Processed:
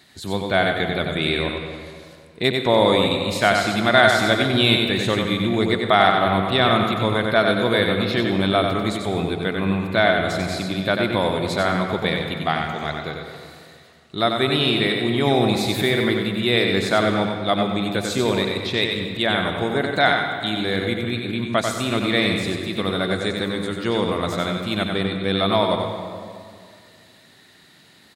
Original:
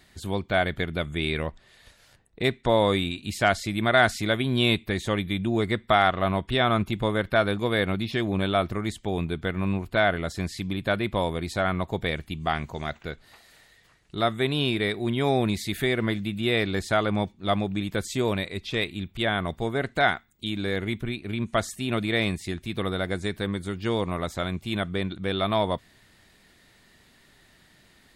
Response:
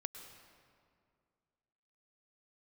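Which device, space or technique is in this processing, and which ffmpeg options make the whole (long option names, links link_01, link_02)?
PA in a hall: -filter_complex "[0:a]highpass=120,equalizer=frequency=4000:width_type=o:width=0.24:gain=7,aecho=1:1:93:0.562[link_01];[1:a]atrim=start_sample=2205[link_02];[link_01][link_02]afir=irnorm=-1:irlink=0,volume=7dB"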